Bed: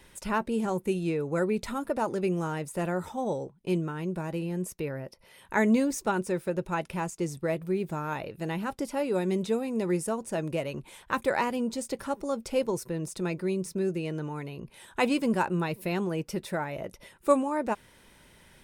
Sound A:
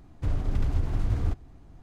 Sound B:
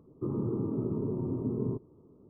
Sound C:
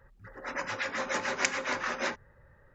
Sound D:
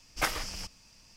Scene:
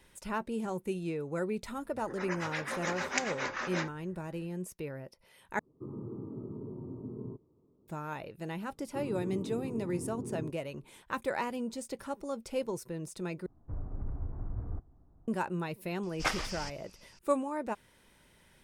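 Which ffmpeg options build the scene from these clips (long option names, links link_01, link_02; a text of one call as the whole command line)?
ffmpeg -i bed.wav -i cue0.wav -i cue1.wav -i cue2.wav -i cue3.wav -filter_complex "[2:a]asplit=2[link_01][link_02];[0:a]volume=-6.5dB[link_03];[1:a]lowpass=frequency=1300:width=0.5412,lowpass=frequency=1300:width=1.3066[link_04];[4:a]lowpass=7500[link_05];[link_03]asplit=3[link_06][link_07][link_08];[link_06]atrim=end=5.594[link_09];[link_01]atrim=end=2.29,asetpts=PTS-STARTPTS,volume=-10dB[link_10];[link_07]atrim=start=7.876:end=13.464[link_11];[link_04]atrim=end=1.82,asetpts=PTS-STARTPTS,volume=-11.5dB[link_12];[link_08]atrim=start=15.276[link_13];[3:a]atrim=end=2.74,asetpts=PTS-STARTPTS,volume=-4dB,afade=type=in:duration=0.004:curve=hsin,afade=type=out:start_time=2.736:duration=0.004:curve=hsin,adelay=1730[link_14];[link_02]atrim=end=2.29,asetpts=PTS-STARTPTS,volume=-8dB,afade=type=in:duration=0.004:curve=hsin,afade=type=out:start_time=2.286:duration=0.004:curve=hsin,adelay=8730[link_15];[link_05]atrim=end=1.16,asetpts=PTS-STARTPTS,volume=-1.5dB,afade=type=in:duration=0.004:curve=hsin,afade=type=out:start_time=1.156:duration=0.004:curve=hsin,adelay=16030[link_16];[link_09][link_10]acrossfade=duration=0.004:curve1=hsin:curve2=hsin[link_17];[link_17][link_11]acrossfade=duration=0.004:curve1=hsin:curve2=hsin[link_18];[link_18][link_12]acrossfade=duration=0.004:curve1=hsin:curve2=hsin[link_19];[link_19][link_13]acrossfade=duration=0.004:curve1=hsin:curve2=hsin[link_20];[link_20][link_14][link_15][link_16]amix=inputs=4:normalize=0" out.wav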